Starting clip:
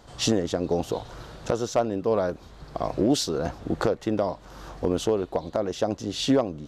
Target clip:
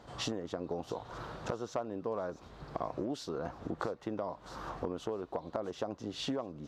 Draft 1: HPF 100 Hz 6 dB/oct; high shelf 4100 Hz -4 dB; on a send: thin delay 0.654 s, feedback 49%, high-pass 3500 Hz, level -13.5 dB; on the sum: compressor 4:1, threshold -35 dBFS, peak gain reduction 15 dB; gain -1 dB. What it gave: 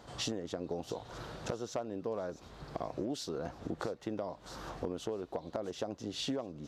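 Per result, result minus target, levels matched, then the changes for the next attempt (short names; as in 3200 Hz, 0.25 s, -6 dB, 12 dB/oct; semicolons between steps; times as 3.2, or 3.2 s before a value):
8000 Hz band +4.5 dB; 1000 Hz band -2.5 dB
change: high shelf 4100 Hz -11 dB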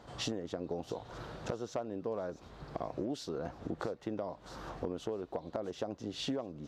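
1000 Hz band -2.5 dB
add after compressor: dynamic EQ 1100 Hz, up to +6 dB, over -55 dBFS, Q 1.7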